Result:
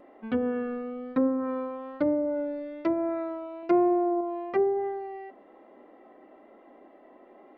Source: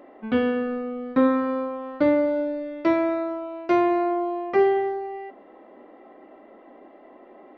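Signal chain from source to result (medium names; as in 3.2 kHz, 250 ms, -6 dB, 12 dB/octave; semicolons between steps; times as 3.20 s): 3.62–4.21 s: comb 5.7 ms, depth 63%; low-pass that closes with the level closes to 670 Hz, closed at -16.5 dBFS; vibrato 1.1 Hz 19 cents; trim -5 dB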